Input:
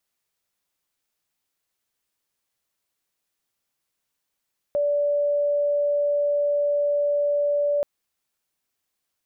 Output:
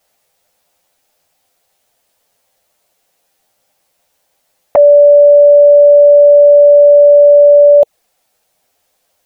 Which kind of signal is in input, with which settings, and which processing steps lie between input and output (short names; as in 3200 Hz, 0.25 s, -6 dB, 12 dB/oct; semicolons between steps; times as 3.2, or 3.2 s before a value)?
tone sine 580 Hz -19 dBFS 3.08 s
band shelf 630 Hz +9.5 dB 1 oct; envelope flanger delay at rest 11.5 ms, full sweep at -12 dBFS; maximiser +19.5 dB